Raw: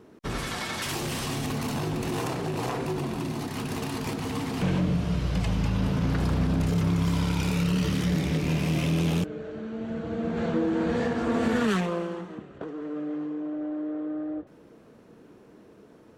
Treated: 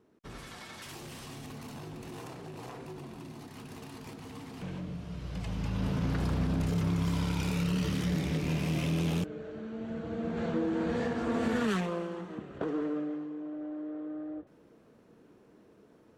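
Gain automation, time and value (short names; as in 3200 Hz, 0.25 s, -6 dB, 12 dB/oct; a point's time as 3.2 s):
5.09 s -14 dB
5.89 s -5 dB
12.12 s -5 dB
12.75 s +4.5 dB
13.25 s -7 dB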